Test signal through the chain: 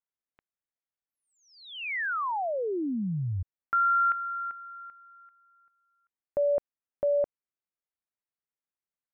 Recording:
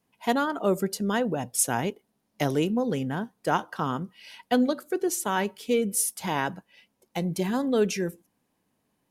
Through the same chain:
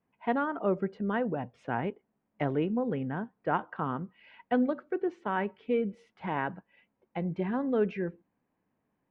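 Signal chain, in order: LPF 2300 Hz 24 dB/oct; gain -4 dB

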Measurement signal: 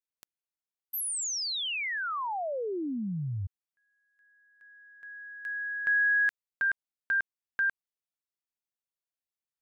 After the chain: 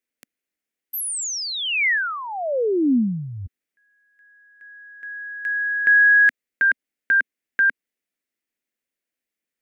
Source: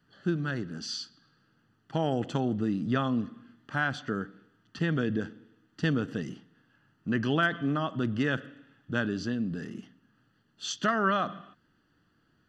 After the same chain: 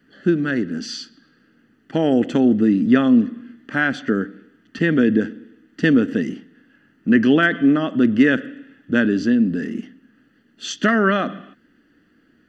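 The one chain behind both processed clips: graphic EQ 125/250/500/1000/2000/4000 Hz -8/+11/+5/-8/+10/-3 dB; gain +6 dB

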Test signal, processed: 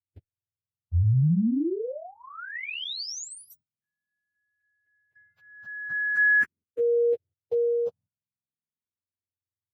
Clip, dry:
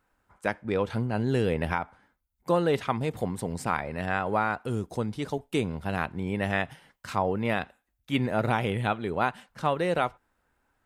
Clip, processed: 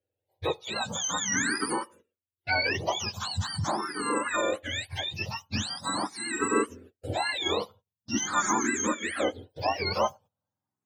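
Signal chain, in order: spectrum mirrored in octaves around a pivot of 880 Hz; gate -53 dBFS, range -17 dB; endless phaser +0.43 Hz; gain +5.5 dB

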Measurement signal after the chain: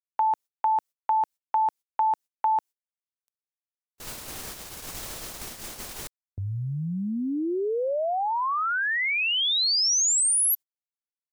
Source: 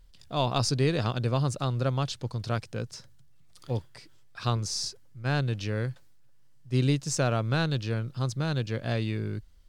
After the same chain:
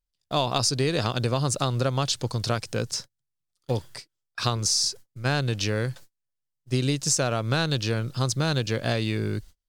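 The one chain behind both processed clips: gate -46 dBFS, range -34 dB; tone controls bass -4 dB, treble +7 dB; compressor, threshold -29 dBFS; gain +8.5 dB

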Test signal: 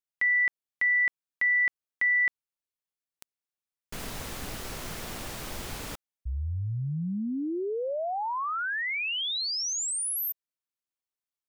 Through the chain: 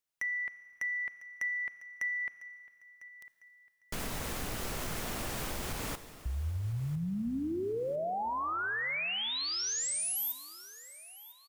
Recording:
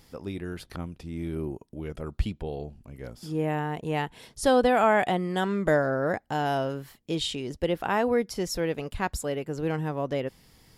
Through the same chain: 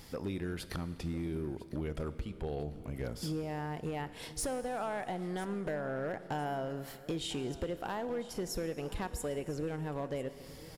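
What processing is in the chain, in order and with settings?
dynamic EQ 4200 Hz, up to -7 dB, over -45 dBFS, Q 1; compressor 12:1, threshold -37 dBFS; overloaded stage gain 34.5 dB; on a send: feedback echo 1.001 s, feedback 37%, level -18 dB; on the sum: Schroeder reverb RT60 2.3 s, combs from 27 ms, DRR 13 dB; gain +4.5 dB

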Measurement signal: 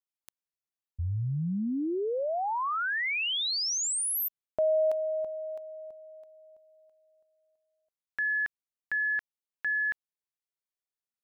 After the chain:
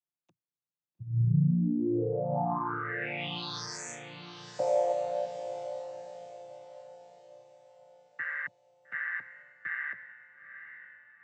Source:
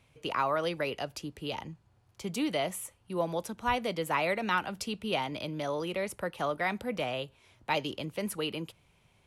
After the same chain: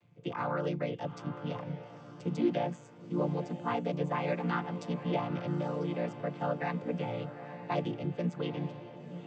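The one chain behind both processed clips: chord vocoder major triad, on A#2; on a send: diffused feedback echo 0.892 s, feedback 42%, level -11 dB

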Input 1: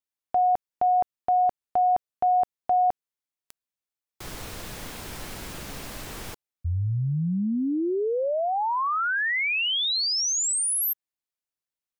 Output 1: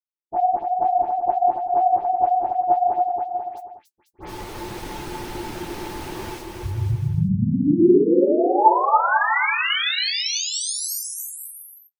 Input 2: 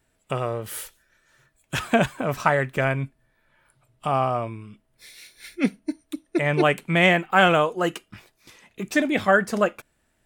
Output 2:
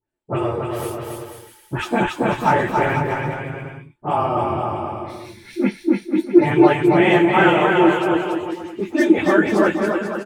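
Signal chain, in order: phase scrambler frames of 50 ms; gate with hold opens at -46 dBFS, range -19 dB; high shelf 5500 Hz -6.5 dB; notch 7200 Hz, Q 22; in parallel at -3 dB: limiter -16 dBFS; on the sum: small resonant body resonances 350/870 Hz, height 16 dB, ringing for 85 ms; dispersion highs, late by 88 ms, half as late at 2500 Hz; flange 0.6 Hz, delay 6.6 ms, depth 6 ms, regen -53%; on a send: bouncing-ball echo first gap 0.28 s, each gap 0.75×, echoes 5; on the sum: gain +1 dB

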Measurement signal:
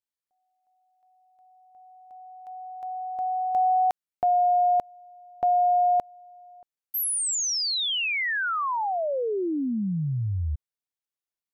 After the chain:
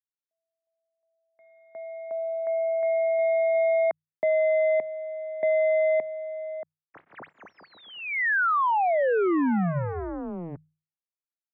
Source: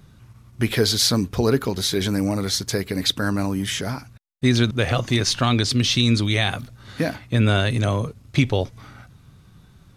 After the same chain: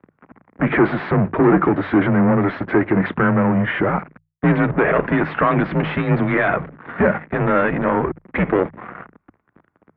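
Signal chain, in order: sample leveller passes 5; notches 60/120/180/240 Hz; mistuned SSB -85 Hz 240–2100 Hz; gain -3 dB

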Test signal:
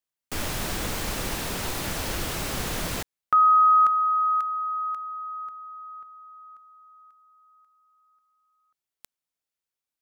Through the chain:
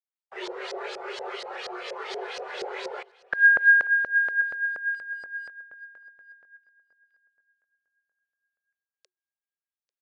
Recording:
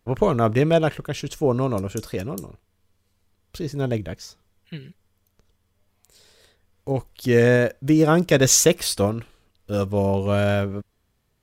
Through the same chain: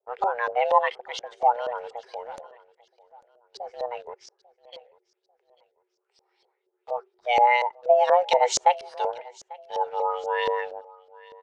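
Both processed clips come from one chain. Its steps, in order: notch 730 Hz, Q 12; frequency shift +360 Hz; spectral noise reduction 8 dB; elliptic band-pass 270–9600 Hz, stop band 40 dB; in parallel at -6.5 dB: sample gate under -37 dBFS; on the sum: LFO low-pass saw up 4.2 Hz 530–5100 Hz; on a send: feedback echo 0.844 s, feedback 34%, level -22.5 dB; on the sum: gain -7 dB

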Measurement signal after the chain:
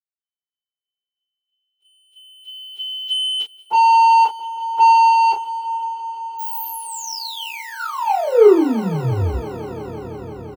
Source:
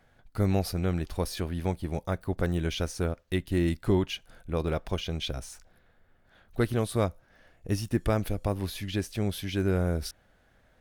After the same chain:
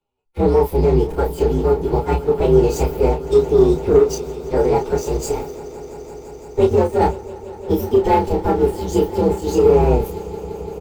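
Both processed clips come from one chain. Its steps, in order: inharmonic rescaling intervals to 130%; small resonant body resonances 430/840/1400 Hz, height 15 dB, ringing for 30 ms; sample leveller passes 2; fifteen-band EQ 400 Hz +4 dB, 1600 Hz -7 dB, 10000 Hz -5 dB; limiter -10.5 dBFS; doubler 31 ms -5.5 dB; swelling echo 0.17 s, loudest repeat 5, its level -17.5 dB; three-band expander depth 40%; gain +2 dB

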